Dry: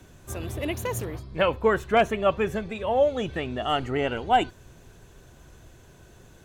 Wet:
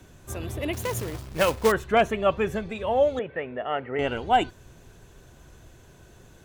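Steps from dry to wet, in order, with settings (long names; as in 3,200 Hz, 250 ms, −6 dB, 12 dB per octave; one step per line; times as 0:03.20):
0:00.73–0:01.72: log-companded quantiser 4 bits
0:03.19–0:03.99: loudspeaker in its box 200–2,200 Hz, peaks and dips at 200 Hz −8 dB, 320 Hz −10 dB, 510 Hz +6 dB, 760 Hz −4 dB, 1,200 Hz −5 dB, 2,000 Hz +3 dB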